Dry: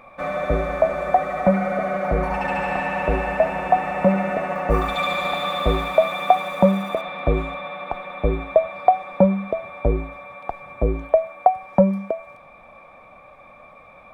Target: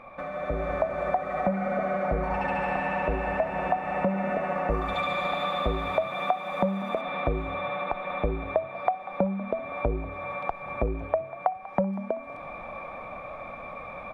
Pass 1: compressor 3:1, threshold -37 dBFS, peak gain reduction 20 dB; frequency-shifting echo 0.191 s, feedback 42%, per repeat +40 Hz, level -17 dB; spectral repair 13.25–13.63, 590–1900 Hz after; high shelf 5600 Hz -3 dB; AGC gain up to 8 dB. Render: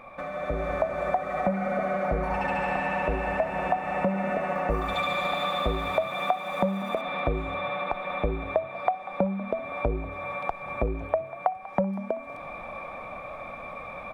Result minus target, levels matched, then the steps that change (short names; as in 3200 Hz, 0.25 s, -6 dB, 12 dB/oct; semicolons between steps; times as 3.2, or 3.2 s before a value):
8000 Hz band +6.5 dB
change: high shelf 5600 Hz -13.5 dB